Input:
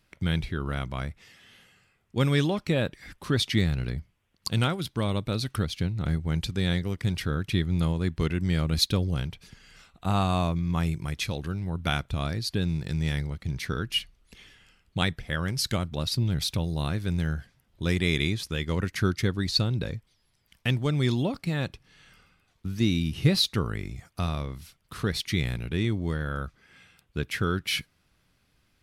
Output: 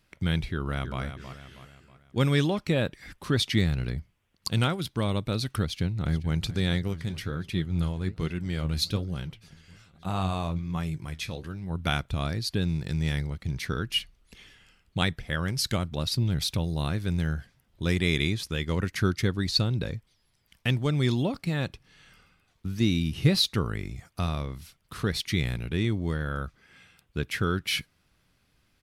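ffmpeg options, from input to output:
ffmpeg -i in.wav -filter_complex "[0:a]asplit=2[link_01][link_02];[link_02]afade=type=in:start_time=0.51:duration=0.01,afade=type=out:start_time=1.01:duration=0.01,aecho=0:1:320|640|960|1280|1600:0.334965|0.150734|0.0678305|0.0305237|0.0137357[link_03];[link_01][link_03]amix=inputs=2:normalize=0,asplit=2[link_04][link_05];[link_05]afade=type=in:start_time=5.66:duration=0.01,afade=type=out:start_time=6.33:duration=0.01,aecho=0:1:430|860|1290|1720|2150|2580|3010|3440|3870|4300|4730|5160:0.177828|0.151154|0.128481|0.109209|0.0928273|0.0789032|0.0670677|0.0570076|0.0484564|0.041188|0.0350098|0.0297583[link_06];[link_04][link_06]amix=inputs=2:normalize=0,asplit=3[link_07][link_08][link_09];[link_07]afade=type=out:start_time=6.92:duration=0.02[link_10];[link_08]flanger=delay=5:depth=8.6:regen=61:speed=1.2:shape=sinusoidal,afade=type=in:start_time=6.92:duration=0.02,afade=type=out:start_time=11.69:duration=0.02[link_11];[link_09]afade=type=in:start_time=11.69:duration=0.02[link_12];[link_10][link_11][link_12]amix=inputs=3:normalize=0" out.wav

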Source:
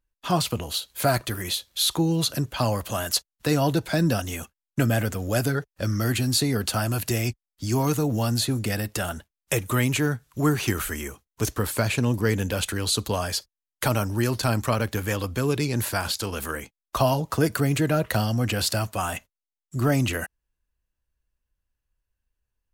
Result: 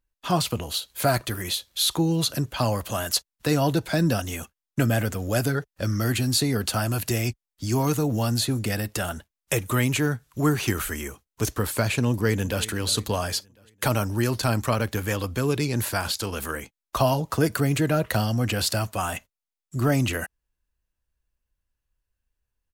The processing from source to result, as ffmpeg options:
ffmpeg -i in.wav -filter_complex "[0:a]asplit=2[link_01][link_02];[link_02]afade=type=in:start_time=12.09:duration=0.01,afade=type=out:start_time=12.67:duration=0.01,aecho=0:1:350|700|1050|1400:0.141254|0.0635642|0.0286039|0.0128717[link_03];[link_01][link_03]amix=inputs=2:normalize=0" out.wav

